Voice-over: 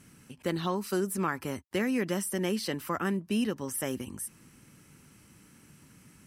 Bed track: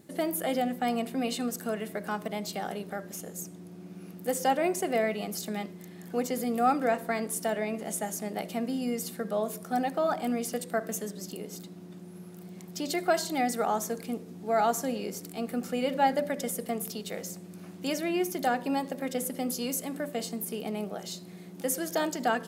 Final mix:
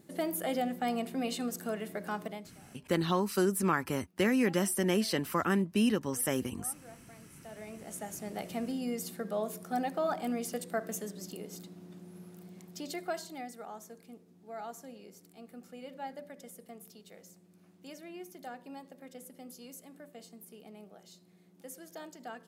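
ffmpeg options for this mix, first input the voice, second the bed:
-filter_complex "[0:a]adelay=2450,volume=1.5dB[a];[1:a]volume=18.5dB,afade=t=out:st=2.23:d=0.28:silence=0.0749894,afade=t=in:st=7.37:d=1.14:silence=0.0794328,afade=t=out:st=12.23:d=1.31:silence=0.223872[b];[a][b]amix=inputs=2:normalize=0"

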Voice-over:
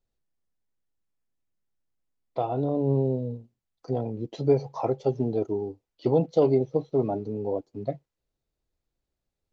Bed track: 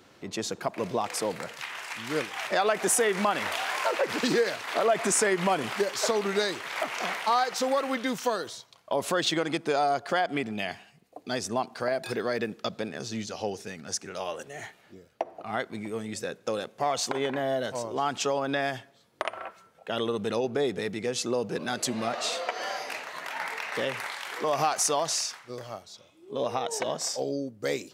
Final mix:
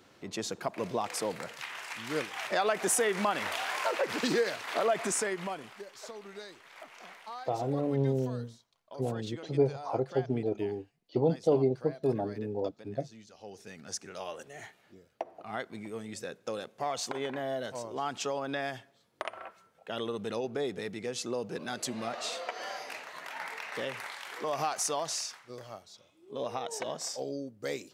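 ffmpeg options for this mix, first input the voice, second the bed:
-filter_complex "[0:a]adelay=5100,volume=-4.5dB[a];[1:a]volume=9dB,afade=t=out:st=4.83:d=0.9:silence=0.177828,afade=t=in:st=13.4:d=0.42:silence=0.237137[b];[a][b]amix=inputs=2:normalize=0"

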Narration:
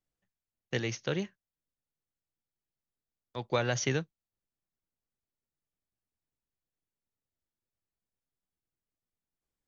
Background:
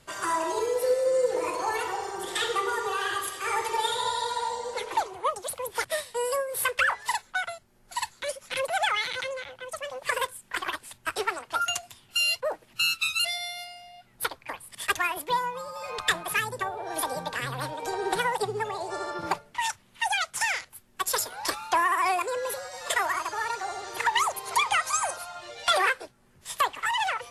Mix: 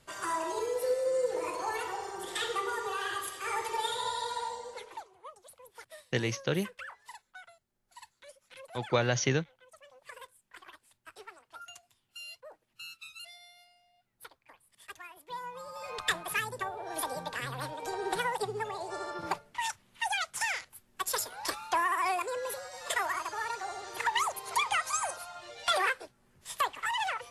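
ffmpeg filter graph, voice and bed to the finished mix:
-filter_complex "[0:a]adelay=5400,volume=2dB[a];[1:a]volume=10dB,afade=t=out:st=4.39:d=0.66:silence=0.177828,afade=t=in:st=15.24:d=0.52:silence=0.16788[b];[a][b]amix=inputs=2:normalize=0"

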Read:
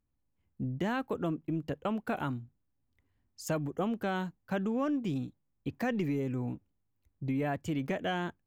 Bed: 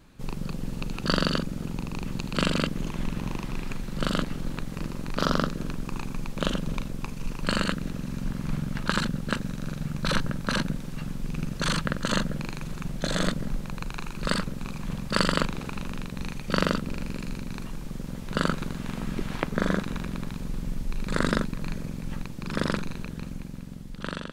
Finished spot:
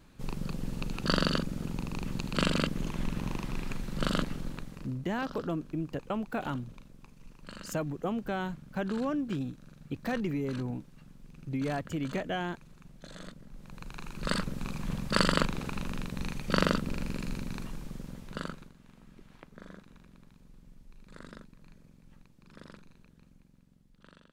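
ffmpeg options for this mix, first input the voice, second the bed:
-filter_complex "[0:a]adelay=4250,volume=-0.5dB[a];[1:a]volume=15dB,afade=t=out:st=4.22:d=0.76:silence=0.141254,afade=t=in:st=13.51:d=1.11:silence=0.125893,afade=t=out:st=17.42:d=1.31:silence=0.0841395[b];[a][b]amix=inputs=2:normalize=0"

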